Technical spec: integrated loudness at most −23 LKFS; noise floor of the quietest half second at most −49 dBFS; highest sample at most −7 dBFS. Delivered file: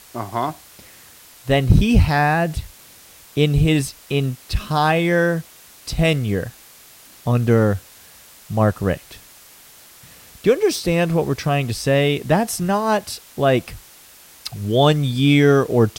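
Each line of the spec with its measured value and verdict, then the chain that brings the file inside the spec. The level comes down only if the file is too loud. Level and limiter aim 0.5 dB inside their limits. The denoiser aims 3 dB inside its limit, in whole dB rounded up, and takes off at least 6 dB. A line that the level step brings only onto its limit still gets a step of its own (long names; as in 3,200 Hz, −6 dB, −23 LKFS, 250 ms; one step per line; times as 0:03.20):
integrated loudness −19.0 LKFS: out of spec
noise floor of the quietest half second −46 dBFS: out of spec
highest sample −2.0 dBFS: out of spec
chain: level −4.5 dB
brickwall limiter −7.5 dBFS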